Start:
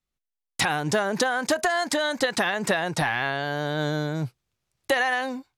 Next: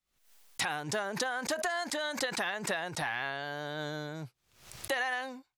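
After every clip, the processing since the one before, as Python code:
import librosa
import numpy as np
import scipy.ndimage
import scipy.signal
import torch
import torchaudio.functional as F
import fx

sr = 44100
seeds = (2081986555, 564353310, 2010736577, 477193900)

y = fx.low_shelf(x, sr, hz=420.0, db=-7.0)
y = fx.pre_swell(y, sr, db_per_s=100.0)
y = y * 10.0 ** (-8.0 / 20.0)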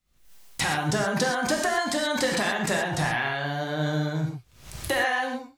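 y = fx.low_shelf(x, sr, hz=270.0, db=11.0)
y = fx.rev_gated(y, sr, seeds[0], gate_ms=150, shape='flat', drr_db=0.5)
y = y * 10.0 ** (4.0 / 20.0)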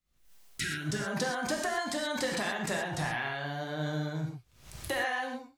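y = fx.spec_repair(x, sr, seeds[1], start_s=0.55, length_s=0.52, low_hz=440.0, high_hz=1300.0, source='both')
y = y * 10.0 ** (-7.0 / 20.0)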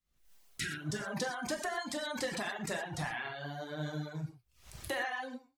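y = fx.dereverb_blind(x, sr, rt60_s=0.9)
y = y * 10.0 ** (-3.0 / 20.0)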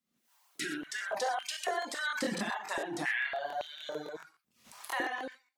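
y = fx.buffer_crackle(x, sr, first_s=0.82, period_s=0.14, block=1024, kind='repeat')
y = fx.filter_held_highpass(y, sr, hz=3.6, low_hz=220.0, high_hz=2800.0)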